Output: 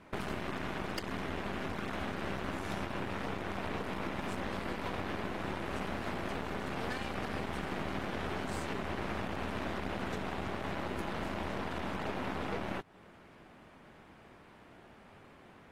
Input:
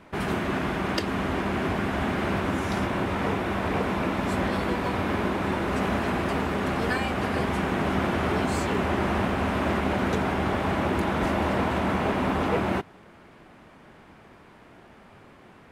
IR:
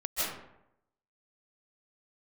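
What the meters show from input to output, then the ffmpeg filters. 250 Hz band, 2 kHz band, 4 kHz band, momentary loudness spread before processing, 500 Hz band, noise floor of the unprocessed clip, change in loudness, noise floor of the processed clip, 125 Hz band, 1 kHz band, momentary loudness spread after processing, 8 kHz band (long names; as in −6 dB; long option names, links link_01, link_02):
−12.5 dB, −10.5 dB, −8.5 dB, 2 LU, −12.0 dB, −52 dBFS, −11.5 dB, −57 dBFS, −12.5 dB, −11.5 dB, 19 LU, −9.5 dB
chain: -af "aeval=exprs='0.266*(cos(1*acos(clip(val(0)/0.266,-1,1)))-cos(1*PI/2))+0.00266*(cos(6*acos(clip(val(0)/0.266,-1,1)))-cos(6*PI/2))+0.015*(cos(7*acos(clip(val(0)/0.266,-1,1)))-cos(7*PI/2))+0.0299*(cos(8*acos(clip(val(0)/0.266,-1,1)))-cos(8*PI/2))':channel_layout=same,acompressor=threshold=-32dB:ratio=6,volume=-1.5dB" -ar 44100 -c:a aac -b:a 48k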